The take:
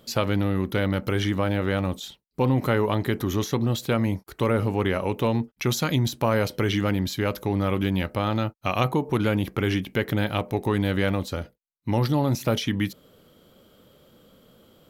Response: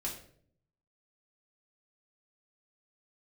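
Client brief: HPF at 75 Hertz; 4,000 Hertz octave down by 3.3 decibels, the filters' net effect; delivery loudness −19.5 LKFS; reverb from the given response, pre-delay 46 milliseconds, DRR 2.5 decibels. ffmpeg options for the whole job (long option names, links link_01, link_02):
-filter_complex "[0:a]highpass=75,equalizer=frequency=4000:width_type=o:gain=-4.5,asplit=2[link_01][link_02];[1:a]atrim=start_sample=2205,adelay=46[link_03];[link_02][link_03]afir=irnorm=-1:irlink=0,volume=-3.5dB[link_04];[link_01][link_04]amix=inputs=2:normalize=0,volume=3dB"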